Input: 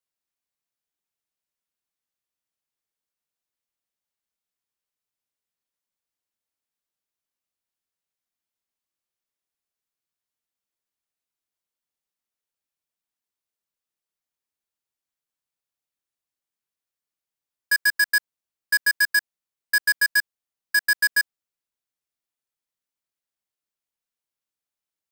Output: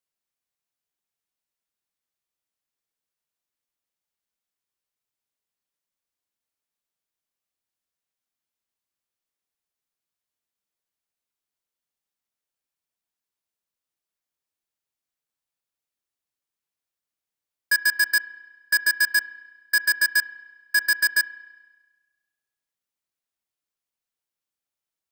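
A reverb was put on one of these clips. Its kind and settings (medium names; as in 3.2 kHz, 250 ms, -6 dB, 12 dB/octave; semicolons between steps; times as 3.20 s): spring tank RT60 1.3 s, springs 31 ms, chirp 75 ms, DRR 14.5 dB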